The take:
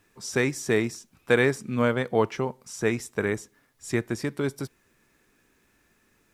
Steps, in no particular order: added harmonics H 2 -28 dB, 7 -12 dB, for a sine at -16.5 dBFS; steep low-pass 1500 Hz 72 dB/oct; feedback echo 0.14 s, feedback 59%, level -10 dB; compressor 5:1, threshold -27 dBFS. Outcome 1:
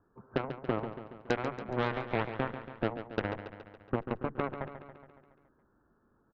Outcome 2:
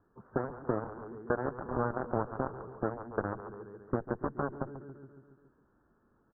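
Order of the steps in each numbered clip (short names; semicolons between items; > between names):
compressor > steep low-pass > added harmonics > feedback echo; feedback echo > compressor > added harmonics > steep low-pass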